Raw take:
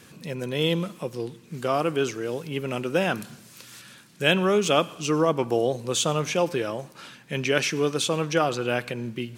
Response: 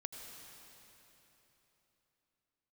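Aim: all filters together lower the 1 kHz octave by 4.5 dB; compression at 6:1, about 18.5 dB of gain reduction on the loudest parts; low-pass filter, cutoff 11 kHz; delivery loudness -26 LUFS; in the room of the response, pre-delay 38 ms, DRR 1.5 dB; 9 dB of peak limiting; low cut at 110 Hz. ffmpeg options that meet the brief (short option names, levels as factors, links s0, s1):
-filter_complex "[0:a]highpass=110,lowpass=11000,equalizer=f=1000:t=o:g=-6.5,acompressor=threshold=0.0112:ratio=6,alimiter=level_in=3.16:limit=0.0631:level=0:latency=1,volume=0.316,asplit=2[s0][s1];[1:a]atrim=start_sample=2205,adelay=38[s2];[s1][s2]afir=irnorm=-1:irlink=0,volume=1.12[s3];[s0][s3]amix=inputs=2:normalize=0,volume=6.31"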